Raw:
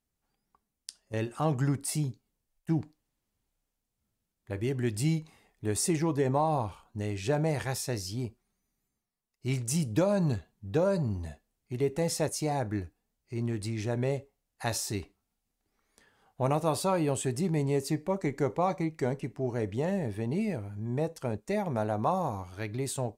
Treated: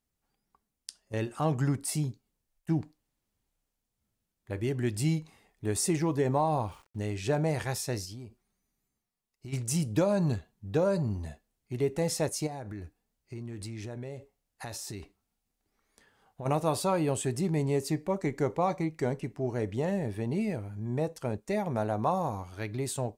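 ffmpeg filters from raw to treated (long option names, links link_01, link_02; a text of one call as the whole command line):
ffmpeg -i in.wav -filter_complex "[0:a]asettb=1/sr,asplit=3[link_01][link_02][link_03];[link_01]atrim=end=5.654[link_04];[link_02]atrim=start=5.65:end=7.07,asetpts=PTS-STARTPTS,afade=type=in:duration=0.004:curve=qsin,afade=type=out:start_time=1.416:duration=0.004:curve=qsin,aeval=exprs='val(0)*gte(abs(val(0)),0.00158)':channel_layout=same[link_05];[link_03]atrim=start=7.066[link_06];[link_04][link_05]acrossfade=duration=0.004:curve1=hsin:curve2=qsin[link_07];[link_07][link_06]acrossfade=duration=0.004:curve1=qsin:curve2=hsin,asplit=3[link_08][link_09][link_10];[link_08]afade=type=out:start_time=8.04:duration=0.02[link_11];[link_09]acompressor=threshold=-39dB:ratio=10:attack=3.2:release=140:knee=1:detection=peak,afade=type=in:start_time=8.04:duration=0.02,afade=type=out:start_time=9.52:duration=0.02[link_12];[link_10]afade=type=in:start_time=9.52:duration=0.02[link_13];[link_11][link_12][link_13]amix=inputs=3:normalize=0,asplit=3[link_14][link_15][link_16];[link_14]afade=type=out:start_time=12.46:duration=0.02[link_17];[link_15]acompressor=threshold=-36dB:ratio=6:attack=3.2:release=140:knee=1:detection=peak,afade=type=in:start_time=12.46:duration=0.02,afade=type=out:start_time=16.45:duration=0.02[link_18];[link_16]afade=type=in:start_time=16.45:duration=0.02[link_19];[link_17][link_18][link_19]amix=inputs=3:normalize=0" out.wav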